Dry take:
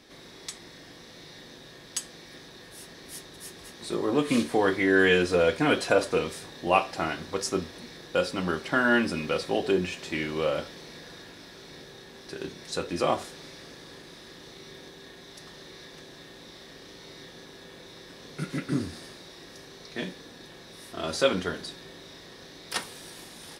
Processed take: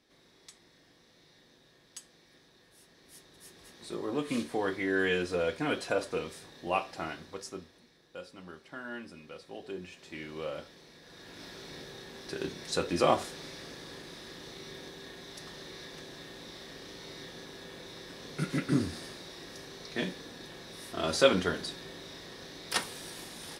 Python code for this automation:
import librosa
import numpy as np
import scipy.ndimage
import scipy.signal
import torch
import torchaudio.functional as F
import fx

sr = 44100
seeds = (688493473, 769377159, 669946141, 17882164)

y = fx.gain(x, sr, db=fx.line((2.87, -14.5), (3.75, -8.0), (7.1, -8.0), (7.93, -19.0), (9.38, -19.0), (10.35, -10.5), (11.0, -10.5), (11.43, 0.5)))